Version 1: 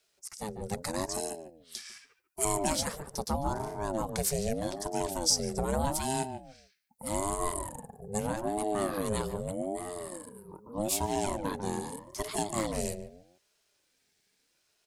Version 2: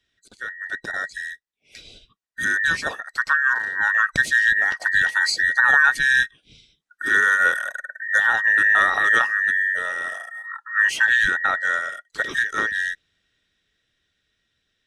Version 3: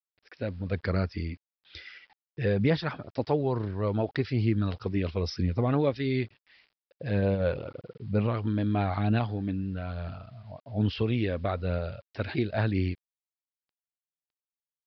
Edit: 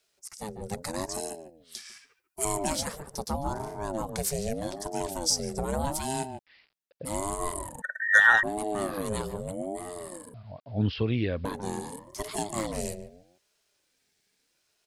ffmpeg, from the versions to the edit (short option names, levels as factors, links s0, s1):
-filter_complex "[2:a]asplit=2[s0][s1];[0:a]asplit=4[s2][s3][s4][s5];[s2]atrim=end=6.392[s6];[s0]atrim=start=6.388:end=7.052[s7];[s3]atrim=start=7.048:end=7.822[s8];[1:a]atrim=start=7.818:end=8.432[s9];[s4]atrim=start=8.428:end=10.342[s10];[s1]atrim=start=10.338:end=11.452[s11];[s5]atrim=start=11.448[s12];[s6][s7]acrossfade=d=0.004:c1=hsin:c2=hsin[s13];[s13][s8]acrossfade=d=0.004:c1=hsin:c2=hsin[s14];[s14][s9]acrossfade=d=0.004:c1=hsin:c2=hsin[s15];[s15][s10]acrossfade=d=0.004:c1=hsin:c2=hsin[s16];[s16][s11]acrossfade=d=0.004:c1=hsin:c2=hsin[s17];[s17][s12]acrossfade=d=0.004:c1=hsin:c2=hsin"